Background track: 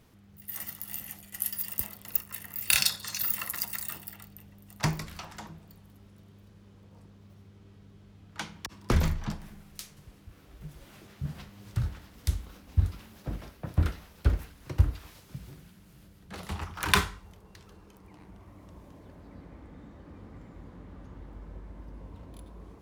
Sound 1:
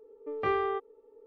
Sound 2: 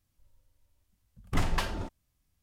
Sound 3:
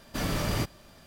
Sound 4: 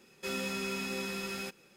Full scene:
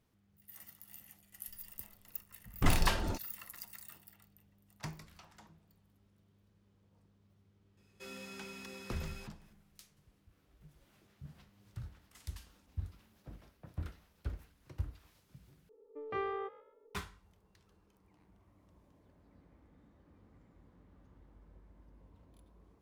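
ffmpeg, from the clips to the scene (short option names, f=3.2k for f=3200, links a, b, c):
-filter_complex "[2:a]asplit=2[a][b];[0:a]volume=-15.5dB[c];[b]aderivative[d];[1:a]asplit=4[e][f][g][h];[f]adelay=128,afreqshift=62,volume=-18dB[i];[g]adelay=256,afreqshift=124,volume=-27.6dB[j];[h]adelay=384,afreqshift=186,volume=-37.3dB[k];[e][i][j][k]amix=inputs=4:normalize=0[l];[c]asplit=2[m][n];[m]atrim=end=15.694[o];[l]atrim=end=1.26,asetpts=PTS-STARTPTS,volume=-8.5dB[p];[n]atrim=start=16.946[q];[a]atrim=end=2.42,asetpts=PTS-STARTPTS,afade=t=in:d=0.004:c=hsin,afade=t=out:st=2.416:d=0.004:c=hsin,adelay=1290[r];[4:a]atrim=end=1.76,asetpts=PTS-STARTPTS,volume=-12.5dB,afade=t=in:d=0.004:c=hsin,afade=t=out:st=1.756:d=0.004:c=hsin,adelay=7770[s];[d]atrim=end=2.42,asetpts=PTS-STARTPTS,volume=-16.5dB,afade=t=in:d=0.004:c=hsin,afade=t=out:st=2.416:d=0.004:c=hsin,adelay=10780[t];[o][p]acrossfade=d=0.004:c1=hsin:c2=hsin[u];[u][q]acrossfade=d=0.004:c1=hsin:c2=hsin[v];[v][r][s][t]amix=inputs=4:normalize=0"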